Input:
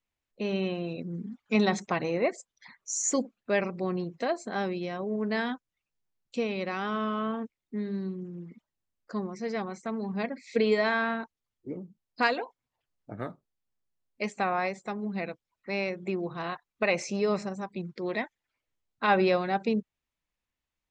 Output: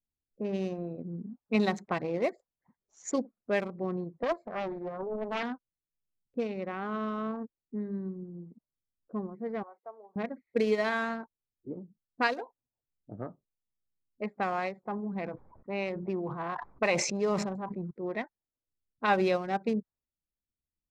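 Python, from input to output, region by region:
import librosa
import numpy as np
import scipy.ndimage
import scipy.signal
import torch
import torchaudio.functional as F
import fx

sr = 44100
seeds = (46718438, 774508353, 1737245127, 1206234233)

y = fx.chain(x, sr, fx.high_shelf(hz=8100.0, db=-9.0),
    fx.comb(ms=1.8, depth=0.48),
    fx.doppler_dist(depth_ms=0.68), at=(4.23, 5.43))
y = fx.chain(y, sr, fx.highpass(hz=570.0, slope=24),
    fx.high_shelf(hz=2700.0, db=-8.5), at=(9.63, 10.16))
y = fx.chain(y, sr, fx.peak_eq(hz=950.0, db=5.5, octaves=0.51),
    fx.sustainer(db_per_s=37.0), at=(14.8, 17.91))
y = fx.wiener(y, sr, points=15)
y = fx.env_lowpass(y, sr, base_hz=360.0, full_db=-22.5)
y = fx.transient(y, sr, attack_db=1, sustain_db=-3)
y = y * 10.0 ** (-2.5 / 20.0)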